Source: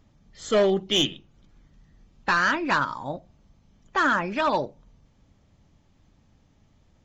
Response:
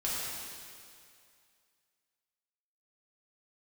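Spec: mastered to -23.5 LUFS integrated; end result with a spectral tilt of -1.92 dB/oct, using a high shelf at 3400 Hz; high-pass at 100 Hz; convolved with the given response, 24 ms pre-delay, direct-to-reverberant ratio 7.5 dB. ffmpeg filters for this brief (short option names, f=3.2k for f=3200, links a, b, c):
-filter_complex "[0:a]highpass=100,highshelf=f=3.4k:g=-5,asplit=2[a][b];[1:a]atrim=start_sample=2205,adelay=24[c];[b][c]afir=irnorm=-1:irlink=0,volume=-14dB[d];[a][d]amix=inputs=2:normalize=0,volume=1dB"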